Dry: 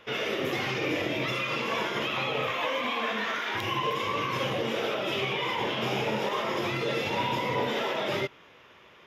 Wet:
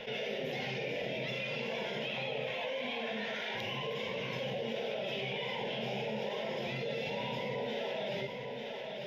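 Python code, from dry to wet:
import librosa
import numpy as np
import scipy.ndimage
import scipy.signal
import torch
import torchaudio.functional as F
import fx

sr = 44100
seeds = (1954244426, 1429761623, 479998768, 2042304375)

y = np.convolve(x, np.full(5, 1.0 / 5))[:len(x)]
y = fx.fixed_phaser(y, sr, hz=320.0, stages=6)
y = y + 10.0 ** (-16.0 / 20.0) * np.pad(y, (int(895 * sr / 1000.0), 0))[:len(y)]
y = fx.env_flatten(y, sr, amount_pct=70)
y = y * 10.0 ** (-6.5 / 20.0)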